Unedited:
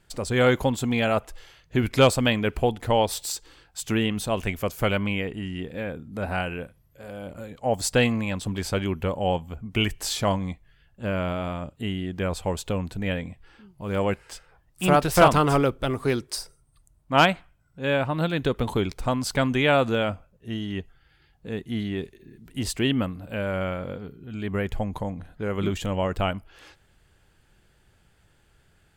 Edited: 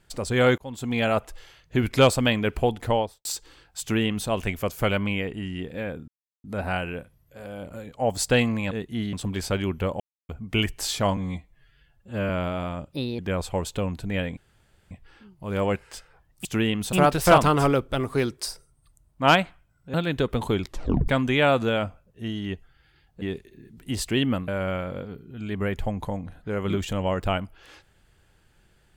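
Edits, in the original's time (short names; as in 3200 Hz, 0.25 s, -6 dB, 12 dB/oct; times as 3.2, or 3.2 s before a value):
0.58–1.03 fade in
2.85–3.25 studio fade out
3.81–4.29 copy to 14.83
6.08 insert silence 0.36 s
9.22–9.51 mute
10.39–11.14 stretch 1.5×
11.77–12.11 speed 129%
13.29 insert room tone 0.54 s
17.84–18.2 cut
18.89 tape stop 0.45 s
21.48–21.9 move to 8.35
23.16–23.41 cut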